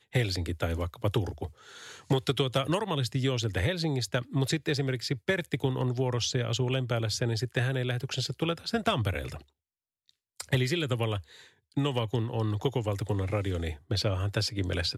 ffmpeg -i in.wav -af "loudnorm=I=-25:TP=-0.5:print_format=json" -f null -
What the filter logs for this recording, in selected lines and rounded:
"input_i" : "-30.1",
"input_tp" : "-14.2",
"input_lra" : "2.1",
"input_thresh" : "-40.5",